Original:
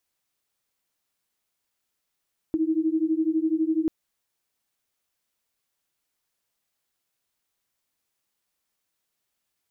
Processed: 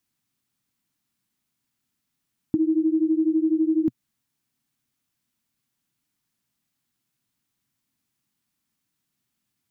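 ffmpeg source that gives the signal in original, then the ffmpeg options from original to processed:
-f lavfi -i "aevalsrc='0.0631*(sin(2*PI*313*t)+sin(2*PI*325*t))':duration=1.34:sample_rate=44100"
-af "equalizer=frequency=125:width_type=o:width=1:gain=11,equalizer=frequency=250:width_type=o:width=1:gain=12,equalizer=frequency=500:width_type=o:width=1:gain=-9,acompressor=threshold=-18dB:ratio=6"

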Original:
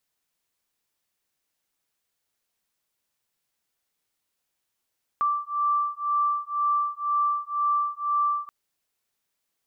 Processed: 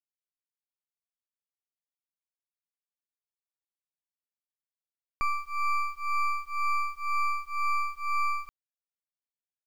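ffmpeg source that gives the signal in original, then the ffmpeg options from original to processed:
-f lavfi -i "aevalsrc='0.0531*(sin(2*PI*1170*t)+sin(2*PI*1172*t))':duration=3.28:sample_rate=44100"
-af "aeval=exprs='max(val(0),0)':channel_layout=same,acrusher=bits=9:mix=0:aa=0.000001"

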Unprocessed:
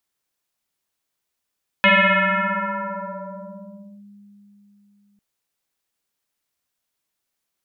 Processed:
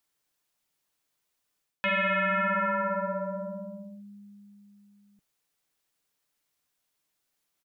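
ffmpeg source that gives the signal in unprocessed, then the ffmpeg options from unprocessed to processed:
-f lavfi -i "aevalsrc='0.316*pow(10,-3*t/4.15)*sin(2*PI*203*t+6.6*clip(1-t/2.18,0,1)*sin(2*PI*1.92*203*t))':duration=3.35:sample_rate=44100"
-af "aecho=1:1:6.7:0.32,areverse,acompressor=threshold=-24dB:ratio=16,areverse"

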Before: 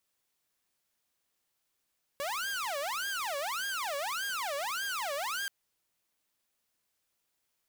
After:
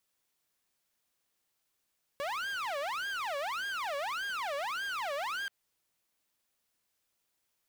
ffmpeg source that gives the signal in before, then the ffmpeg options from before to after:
-f lavfi -i "aevalsrc='0.0316*(2*mod((1089*t-531/(2*PI*1.7)*sin(2*PI*1.7*t)),1)-1)':duration=3.28:sample_rate=44100"
-filter_complex "[0:a]acrossover=split=4000[link_01][link_02];[link_02]acompressor=threshold=-48dB:ratio=4:attack=1:release=60[link_03];[link_01][link_03]amix=inputs=2:normalize=0"

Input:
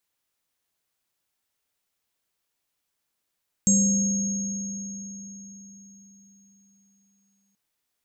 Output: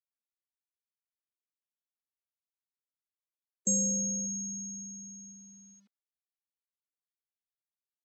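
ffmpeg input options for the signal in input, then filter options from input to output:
-f lavfi -i "aevalsrc='0.126*pow(10,-3*t/4.42)*sin(2*PI*198*t)+0.015*pow(10,-3*t/2.93)*sin(2*PI*526*t)+0.1*pow(10,-3*t/4.41)*sin(2*PI*6540*t)+0.106*pow(10,-3*t/0.72)*sin(2*PI*7560*t)':duration=3.88:sample_rate=44100"
-af "afftfilt=real='re*gte(hypot(re,im),0.0355)':imag='im*gte(hypot(re,im),0.0355)':win_size=1024:overlap=0.75,acrusher=bits=11:mix=0:aa=0.000001,highpass=360,lowpass=5500"

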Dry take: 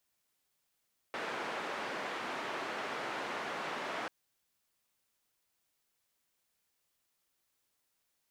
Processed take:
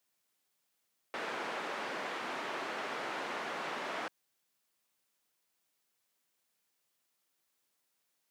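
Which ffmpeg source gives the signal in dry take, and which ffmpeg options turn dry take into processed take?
-f lavfi -i "anoisesrc=color=white:duration=2.94:sample_rate=44100:seed=1,highpass=frequency=280,lowpass=frequency=1600,volume=-22.4dB"
-af "highpass=140"

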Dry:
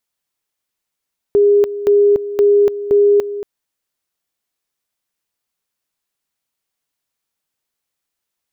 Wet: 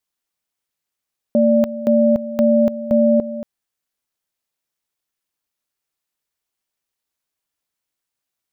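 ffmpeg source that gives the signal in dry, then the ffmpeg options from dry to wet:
-f lavfi -i "aevalsrc='pow(10,(-7.5-13.5*gte(mod(t,0.52),0.29))/20)*sin(2*PI*408*t)':duration=2.08:sample_rate=44100"
-af "aeval=exprs='val(0)*sin(2*PI*180*n/s)':channel_layout=same"

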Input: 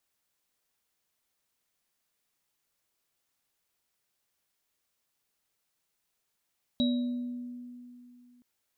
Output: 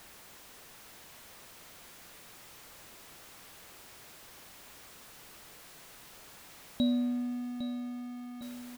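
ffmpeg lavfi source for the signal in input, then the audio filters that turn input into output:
-f lavfi -i "aevalsrc='0.0708*pow(10,-3*t/2.79)*sin(2*PI*245*t)+0.0178*pow(10,-3*t/1.21)*sin(2*PI*579*t)+0.0355*pow(10,-3*t/0.59)*sin(2*PI*3850*t)':duration=1.62:sample_rate=44100"
-filter_complex "[0:a]aeval=exprs='val(0)+0.5*0.00891*sgn(val(0))':channel_layout=same,highshelf=frequency=3100:gain=-8,asplit=2[link_01][link_02];[link_02]aecho=0:1:805|1610|2415|3220|4025:0.282|0.144|0.0733|0.0374|0.0191[link_03];[link_01][link_03]amix=inputs=2:normalize=0"

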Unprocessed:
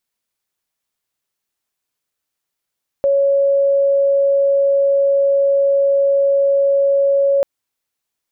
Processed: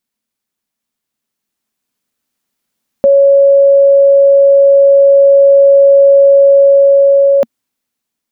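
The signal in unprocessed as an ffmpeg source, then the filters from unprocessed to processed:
-f lavfi -i "sine=frequency=556:duration=4.39:sample_rate=44100,volume=7.06dB"
-af "equalizer=frequency=230:width=2.2:gain=13,dynaudnorm=framelen=550:gausssize=7:maxgain=11.5dB"

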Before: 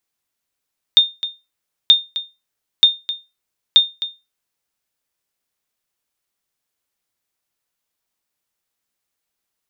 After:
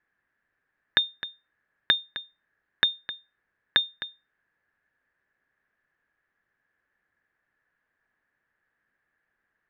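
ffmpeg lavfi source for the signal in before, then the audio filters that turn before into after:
-f lavfi -i "aevalsrc='0.841*(sin(2*PI*3640*mod(t,0.93))*exp(-6.91*mod(t,0.93)/0.24)+0.2*sin(2*PI*3640*max(mod(t,0.93)-0.26,0))*exp(-6.91*max(mod(t,0.93)-0.26,0)/0.24))':duration=3.72:sample_rate=44100"
-filter_complex "[0:a]acrossover=split=660[link_01][link_02];[link_01]acontrast=37[link_03];[link_03][link_02]amix=inputs=2:normalize=0,lowpass=frequency=1700:width_type=q:width=11"

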